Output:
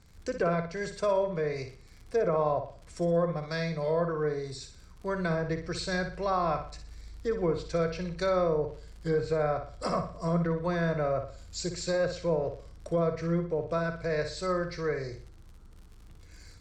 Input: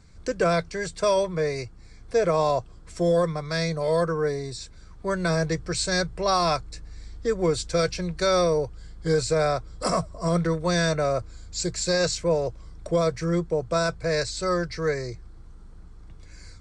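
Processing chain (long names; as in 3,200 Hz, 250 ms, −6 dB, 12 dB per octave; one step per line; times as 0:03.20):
surface crackle 74 per second −38 dBFS
treble cut that deepens with the level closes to 1,700 Hz, closed at −18.5 dBFS
on a send: flutter between parallel walls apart 10.2 metres, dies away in 0.43 s
on the sum: level −5.5 dB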